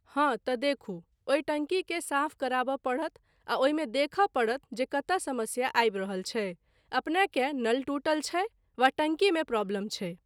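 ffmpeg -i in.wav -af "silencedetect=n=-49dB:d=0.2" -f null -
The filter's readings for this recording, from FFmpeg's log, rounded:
silence_start: 1.01
silence_end: 1.27 | silence_duration: 0.27
silence_start: 3.17
silence_end: 3.47 | silence_duration: 0.30
silence_start: 6.55
silence_end: 6.92 | silence_duration: 0.37
silence_start: 8.48
silence_end: 8.78 | silence_duration: 0.31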